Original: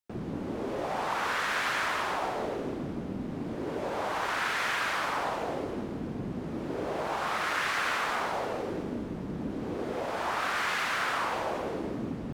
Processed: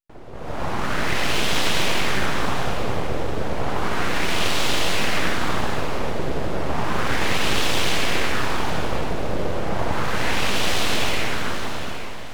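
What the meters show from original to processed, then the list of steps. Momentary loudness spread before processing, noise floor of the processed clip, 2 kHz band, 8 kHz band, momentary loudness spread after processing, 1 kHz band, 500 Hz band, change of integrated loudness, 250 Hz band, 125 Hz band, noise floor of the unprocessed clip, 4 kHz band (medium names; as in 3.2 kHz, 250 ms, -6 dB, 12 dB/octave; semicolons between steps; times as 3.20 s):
8 LU, -28 dBFS, +6.5 dB, +13.0 dB, 6 LU, +4.5 dB, +7.0 dB, +7.5 dB, +6.5 dB, +12.0 dB, -37 dBFS, +13.0 dB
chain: fade out at the end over 1.41 s; level rider gain up to 17 dB; full-wave rectifier; on a send: echo whose repeats swap between lows and highs 405 ms, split 1.8 kHz, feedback 58%, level -6 dB; on the sum: trim -4.5 dB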